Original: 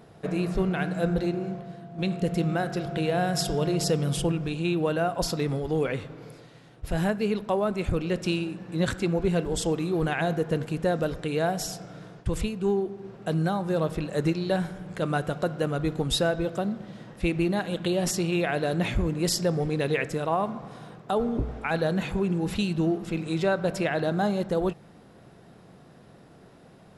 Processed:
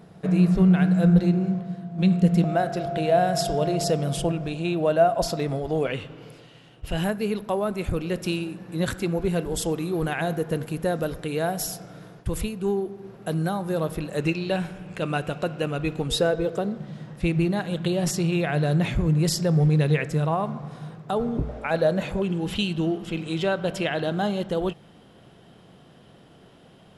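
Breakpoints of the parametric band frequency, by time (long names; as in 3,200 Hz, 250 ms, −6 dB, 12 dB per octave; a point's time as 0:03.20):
parametric band +13 dB 0.27 octaves
180 Hz
from 0:02.44 650 Hz
from 0:05.87 2,900 Hz
from 0:07.04 11,000 Hz
from 0:14.17 2,600 Hz
from 0:16.08 450 Hz
from 0:16.78 150 Hz
from 0:21.49 580 Hz
from 0:22.22 3,100 Hz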